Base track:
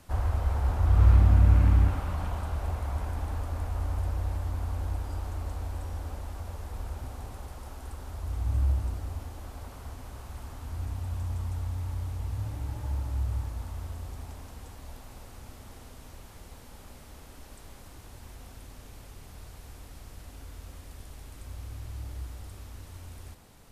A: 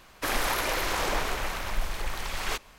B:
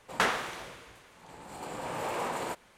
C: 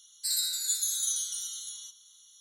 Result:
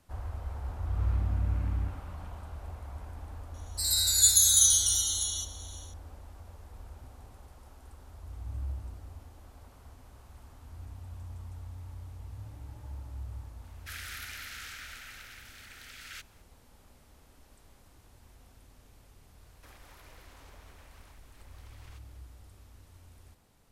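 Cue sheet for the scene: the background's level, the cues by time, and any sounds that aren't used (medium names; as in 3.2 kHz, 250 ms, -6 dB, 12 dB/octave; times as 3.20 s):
base track -10.5 dB
3.54 s: add C -4 dB + level rider gain up to 14 dB
13.64 s: add A -11.5 dB + steep high-pass 1.3 kHz 96 dB/octave
19.41 s: add A -17.5 dB + compression 3:1, threshold -39 dBFS
not used: B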